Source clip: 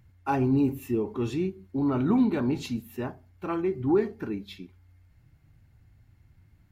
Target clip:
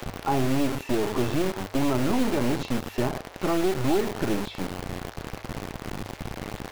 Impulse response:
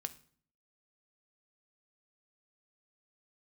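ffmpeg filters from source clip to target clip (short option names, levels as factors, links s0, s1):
-filter_complex "[0:a]aeval=exprs='val(0)+0.5*0.0141*sgn(val(0))':c=same,acrossover=split=5900[s0][s1];[s1]acompressor=threshold=0.001:ratio=4:attack=1:release=60[s2];[s0][s2]amix=inputs=2:normalize=0,asplit=2[s3][s4];[s4]alimiter=limit=0.0631:level=0:latency=1:release=434,volume=0.891[s5];[s3][s5]amix=inputs=2:normalize=0,acrossover=split=380|940[s6][s7][s8];[s6]acompressor=threshold=0.0447:ratio=4[s9];[s7]acompressor=threshold=0.0282:ratio=4[s10];[s8]acompressor=threshold=0.00355:ratio=4[s11];[s9][s10][s11]amix=inputs=3:normalize=0,acrossover=split=470|1300[s12][s13][s14];[s12]acrusher=bits=3:dc=4:mix=0:aa=0.000001[s15];[s15][s13][s14]amix=inputs=3:normalize=0,bandreject=f=50:t=h:w=6,bandreject=f=100:t=h:w=6,volume=1.88"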